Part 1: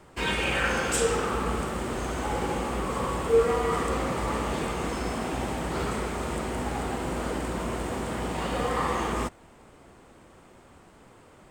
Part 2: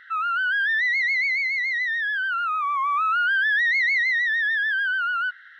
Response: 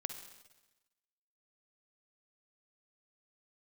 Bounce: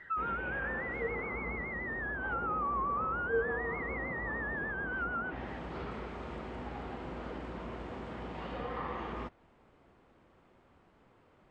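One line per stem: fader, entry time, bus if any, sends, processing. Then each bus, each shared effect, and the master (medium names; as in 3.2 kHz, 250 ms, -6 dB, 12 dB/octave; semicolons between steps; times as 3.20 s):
-11.0 dB, 0.00 s, no send, none
+0.5 dB, 0.00 s, no send, spectral contrast enhancement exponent 1.6; peaking EQ 1.5 kHz -12 dB 0.28 oct; peak limiter -28 dBFS, peak gain reduction 10 dB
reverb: none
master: low-pass that closes with the level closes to 1.2 kHz, closed at -29 dBFS; low-pass 3.6 kHz 12 dB/octave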